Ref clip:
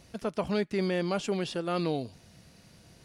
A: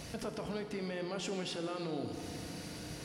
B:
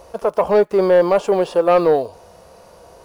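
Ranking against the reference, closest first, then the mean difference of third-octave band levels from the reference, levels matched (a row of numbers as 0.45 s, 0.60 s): B, A; 7.5 dB, 11.0 dB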